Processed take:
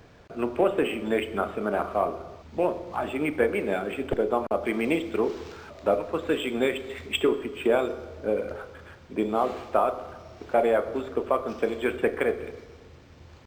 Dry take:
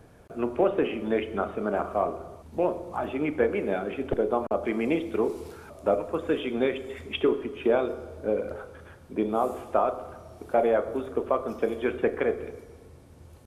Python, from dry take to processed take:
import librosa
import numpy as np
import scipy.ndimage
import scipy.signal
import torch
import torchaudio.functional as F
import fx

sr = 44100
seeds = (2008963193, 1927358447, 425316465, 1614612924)

y = fx.high_shelf(x, sr, hz=2300.0, db=11.0)
y = np.interp(np.arange(len(y)), np.arange(len(y))[::4], y[::4])